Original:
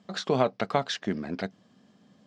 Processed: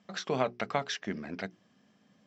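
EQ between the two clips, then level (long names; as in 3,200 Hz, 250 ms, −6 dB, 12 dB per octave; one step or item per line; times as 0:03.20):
Chebyshev low-pass with heavy ripple 7,800 Hz, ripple 6 dB
mains-hum notches 60/120/180/240/300/360/420 Hz
0.0 dB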